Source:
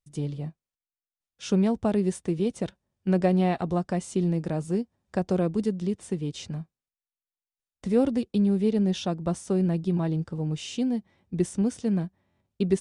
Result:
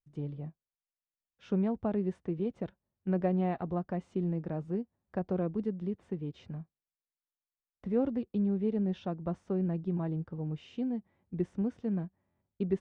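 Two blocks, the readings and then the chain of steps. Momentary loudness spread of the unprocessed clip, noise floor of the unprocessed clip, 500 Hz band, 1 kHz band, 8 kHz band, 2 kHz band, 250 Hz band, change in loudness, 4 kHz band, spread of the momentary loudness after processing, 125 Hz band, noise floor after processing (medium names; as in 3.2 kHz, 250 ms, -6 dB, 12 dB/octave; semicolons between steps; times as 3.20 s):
12 LU, under -85 dBFS, -7.0 dB, -7.0 dB, under -30 dB, -10.0 dB, -7.0 dB, -7.0 dB, under -15 dB, 11 LU, -7.0 dB, under -85 dBFS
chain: low-pass 1.9 kHz 12 dB/octave; trim -7 dB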